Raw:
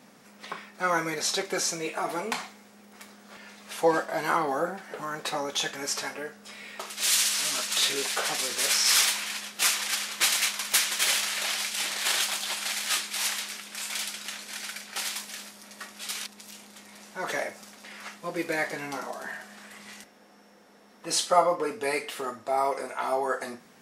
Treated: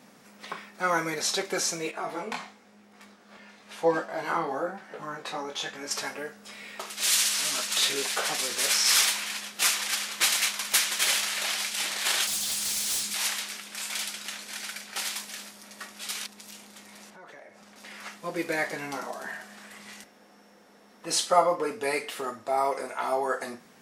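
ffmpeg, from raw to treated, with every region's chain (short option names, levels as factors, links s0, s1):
-filter_complex "[0:a]asettb=1/sr,asplit=3[s0][s1][s2];[s0]atrim=end=1.914[s3];[s1]atrim=start=1.91:end=5.91,asetpts=PTS-STARTPTS,afade=t=in:d=0.004:c=qsin,afade=t=out:st=3.996:d=0.004:c=qsin,highshelf=f=7900:g=-11.5,flanger=delay=18:depth=6:speed=1[s4];[s2]atrim=start=5.906[s5];[s3][s4]acrossfade=d=0.004:c1=hsin:c2=qsin[s6];[s6][s5]acrossfade=d=0.004:c1=qsin:c2=hsin,asettb=1/sr,asplit=3[s7][s8][s9];[s7]atrim=end=12.274[s10];[s8]atrim=start=12.27:end=13.14,asetpts=PTS-STARTPTS,afade=t=in:d=0.004:c=qsin,afade=t=out:st=0.866:d=0.004:c=qsin,bass=f=250:g=13,treble=f=4000:g=9,acrossover=split=180|3000[s11][s12][s13];[s12]acompressor=threshold=0.00794:ratio=2.5:attack=3.2:release=140:knee=2.83:detection=peak[s14];[s11][s14][s13]amix=inputs=3:normalize=0,asoftclip=type=hard:threshold=0.0473[s15];[s9]atrim=start=13.136[s16];[s10][s15]acrossfade=d=0.004:c1=hsin:c2=qsin[s17];[s17][s16]acrossfade=d=0.004:c1=qsin:c2=hsin,asettb=1/sr,asplit=3[s18][s19][s20];[s18]atrim=end=17.104[s21];[s19]atrim=start=17.1:end=17.76,asetpts=PTS-STARTPTS,afade=t=in:d=0.004:c=qsin,afade=t=out:st=0.656:d=0.004:c=qsin,lowpass=f=2700:p=1,acompressor=threshold=0.00398:ratio=4:attack=3.2:release=140:knee=1:detection=peak[s22];[s20]atrim=start=17.756[s23];[s21][s22]acrossfade=d=0.004:c1=hsin:c2=qsin[s24];[s24][s23]acrossfade=d=0.004:c1=qsin:c2=hsin"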